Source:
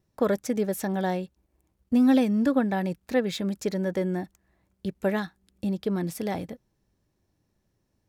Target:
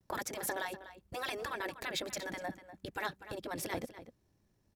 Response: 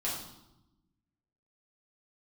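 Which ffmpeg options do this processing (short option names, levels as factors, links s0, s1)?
-filter_complex "[0:a]afftfilt=real='re*lt(hypot(re,im),0.158)':imag='im*lt(hypot(re,im),0.158)':win_size=1024:overlap=0.75,atempo=1.7,asplit=2[s0][s1];[s1]adelay=244.9,volume=0.224,highshelf=f=4000:g=-5.51[s2];[s0][s2]amix=inputs=2:normalize=0"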